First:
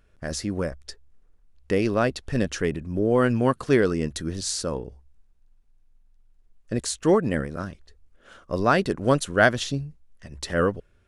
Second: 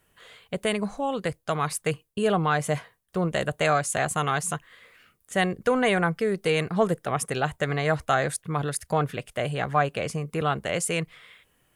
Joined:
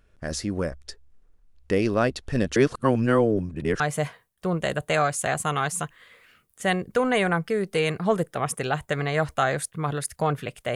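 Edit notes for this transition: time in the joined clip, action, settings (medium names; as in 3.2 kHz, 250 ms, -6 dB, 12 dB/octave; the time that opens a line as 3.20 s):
first
2.56–3.80 s: reverse
3.80 s: go over to second from 2.51 s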